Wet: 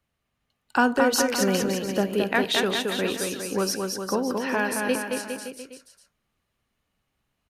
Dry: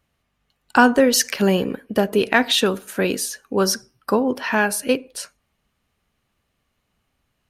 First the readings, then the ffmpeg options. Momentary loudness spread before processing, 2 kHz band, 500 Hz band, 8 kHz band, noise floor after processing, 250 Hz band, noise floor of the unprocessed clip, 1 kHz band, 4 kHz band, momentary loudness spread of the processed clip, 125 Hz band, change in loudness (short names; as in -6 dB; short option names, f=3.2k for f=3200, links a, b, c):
9 LU, -5.0 dB, -4.5 dB, -5.0 dB, -78 dBFS, -5.0 dB, -73 dBFS, -5.0 dB, -5.0 dB, 10 LU, -5.0 dB, -5.0 dB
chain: -filter_complex "[0:a]aecho=1:1:220|407|566|701.1|815.9:0.631|0.398|0.251|0.158|0.1,acrossover=split=110|600|4500[a][b][c][d];[a]acrusher=samples=19:mix=1:aa=0.000001:lfo=1:lforange=19:lforate=1.4[e];[e][b][c][d]amix=inputs=4:normalize=0,volume=-7dB"